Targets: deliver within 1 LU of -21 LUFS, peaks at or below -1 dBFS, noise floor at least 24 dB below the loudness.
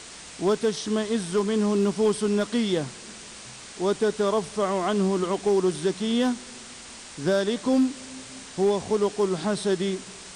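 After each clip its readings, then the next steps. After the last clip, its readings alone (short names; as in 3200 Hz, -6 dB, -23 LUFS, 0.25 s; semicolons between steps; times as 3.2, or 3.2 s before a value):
clipped 0.5%; flat tops at -15.0 dBFS; noise floor -43 dBFS; noise floor target -49 dBFS; loudness -25.0 LUFS; peak -15.0 dBFS; loudness target -21.0 LUFS
-> clip repair -15 dBFS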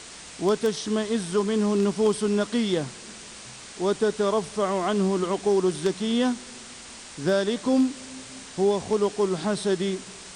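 clipped 0.0%; noise floor -43 dBFS; noise floor target -49 dBFS
-> denoiser 6 dB, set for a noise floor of -43 dBFS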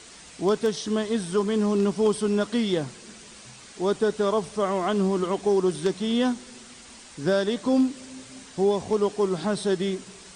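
noise floor -47 dBFS; noise floor target -49 dBFS
-> denoiser 6 dB, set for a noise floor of -47 dBFS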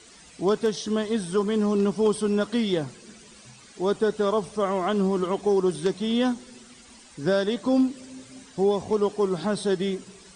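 noise floor -50 dBFS; loudness -25.0 LUFS; peak -8.5 dBFS; loudness target -21.0 LUFS
-> gain +4 dB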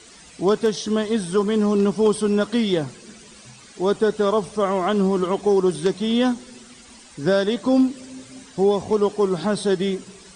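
loudness -21.0 LUFS; peak -4.5 dBFS; noise floor -46 dBFS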